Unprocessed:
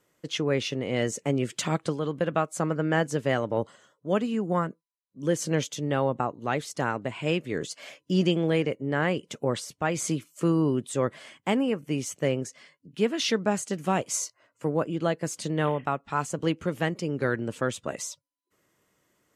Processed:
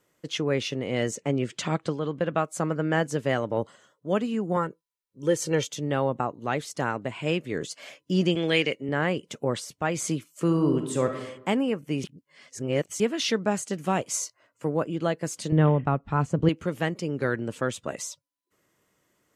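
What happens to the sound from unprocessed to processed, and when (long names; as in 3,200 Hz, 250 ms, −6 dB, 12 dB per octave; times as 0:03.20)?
0:01.15–0:02.38: Bessel low-pass filter 5,800 Hz
0:04.56–0:05.68: comb filter 2.2 ms, depth 59%
0:08.35–0:08.89: meter weighting curve D
0:10.45–0:11.19: thrown reverb, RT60 0.88 s, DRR 4.5 dB
0:12.04–0:13.00: reverse
0:15.52–0:16.49: RIAA equalisation playback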